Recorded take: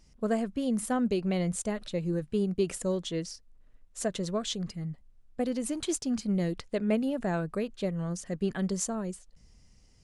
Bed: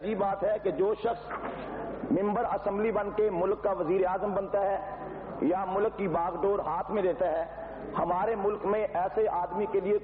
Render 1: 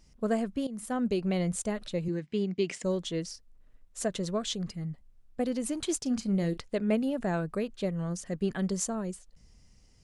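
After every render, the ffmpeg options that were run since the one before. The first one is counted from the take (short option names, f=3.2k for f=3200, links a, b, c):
-filter_complex "[0:a]asettb=1/sr,asplit=3[a][b][c];[a]atrim=end=2.084[d];[b]atrim=start=2.08:end=2.84,asetpts=PTS-STARTPTS,afade=t=in:d=0.004:c=qsin,afade=t=out:st=0.756:d=0.004:c=qsin,highpass=170,equalizer=f=520:t=q:w=4:g=-6,equalizer=f=780:t=q:w=4:g=-3,equalizer=f=1.3k:t=q:w=4:g=-6,equalizer=f=2.1k:t=q:w=4:g=10,equalizer=f=3.1k:t=q:w=4:g=3,equalizer=f=5.1k:t=q:w=4:g=3,lowpass=f=7.1k:w=0.5412,lowpass=f=7.1k:w=1.3066[e];[c]atrim=start=2.836[f];[d][e]acrossfade=d=0.004:c1=hsin:c2=qsin[g];[g][f]acrossfade=d=0.004:c1=qsin:c2=hsin,asettb=1/sr,asplit=3[h][i][j];[h]atrim=end=5.984[k];[i]atrim=start=5.98:end=6.59,asetpts=PTS-STARTPTS,afade=t=in:d=0.004:c=qsin,afade=t=out:st=0.606:d=0.004:c=qsin,asplit=2[l][m];[m]adelay=36,volume=-13.5dB[n];[l][n]amix=inputs=2:normalize=0,atrim=end_sample=26901[o];[j]atrim=start=6.586[p];[k][o]acrossfade=d=0.004:c1=hsin:c2=qsin[q];[q][p]acrossfade=d=0.004:c1=qsin:c2=hsin,asplit=2[r][s];[r]atrim=end=0.67,asetpts=PTS-STARTPTS,afade=t=out:st=0.666:d=0.004:c=hsin:silence=0.149624[t];[s]atrim=start=0.67,asetpts=PTS-STARTPTS,afade=t=in:d=0.6:c=qsin:silence=0.149624[u];[t][u]concat=n=2:v=0:a=1"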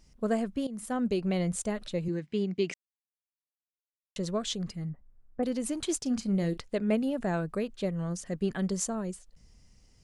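-filter_complex "[0:a]asettb=1/sr,asplit=3[a][b][c];[a]atrim=end=4.894[d];[b]atrim=start=4.89:end=5.43,asetpts=PTS-STARTPTS,afade=t=in:d=0.004:c=qsin,afade=t=out:st=0.536:d=0.004:c=qsin,lowpass=f=1.8k:w=0.5412,lowpass=f=1.8k:w=1.3066[e];[c]atrim=start=5.426[f];[d][e]acrossfade=d=0.004:c1=hsin:c2=qsin[g];[g][f]acrossfade=d=0.004:c1=qsin:c2=hsin,asplit=3[h][i][j];[h]atrim=end=2.74,asetpts=PTS-STARTPTS,afade=t=out:st=2.736:d=0.004:c=hsin[k];[i]atrim=start=2.74:end=4.16,asetpts=PTS-STARTPTS,volume=0[l];[j]atrim=start=4.16,asetpts=PTS-STARTPTS,afade=t=in:d=0.004:c=hsin[m];[k][l][m]concat=n=3:v=0:a=1"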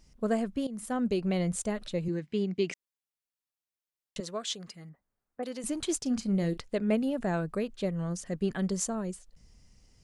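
-filter_complex "[0:a]asettb=1/sr,asplit=3[a][b][c];[a]atrim=end=4.204[d];[b]atrim=start=4.2:end=5.64,asetpts=PTS-STARTPTS,afade=t=in:d=0.004:c=qsin,afade=t=out:st=1.436:d=0.004:c=qsin,highpass=f=670:p=1[e];[c]atrim=start=5.636[f];[d][e]acrossfade=d=0.004:c1=hsin:c2=qsin[g];[g][f]acrossfade=d=0.004:c1=qsin:c2=hsin"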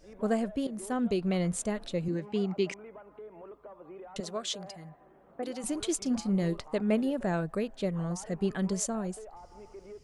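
-filter_complex "[1:a]volume=-20dB[a];[0:a][a]amix=inputs=2:normalize=0"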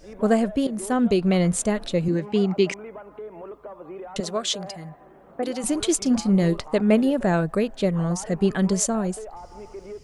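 -af "volume=9dB"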